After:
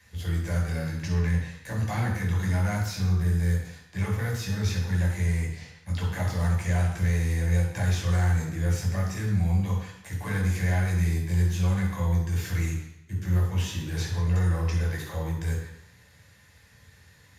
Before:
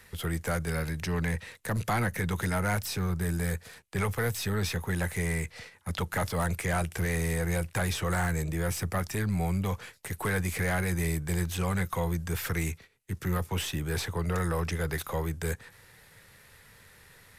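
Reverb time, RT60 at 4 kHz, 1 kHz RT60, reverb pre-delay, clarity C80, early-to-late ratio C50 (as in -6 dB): 0.80 s, 0.85 s, 0.85 s, 3 ms, 6.0 dB, 3.0 dB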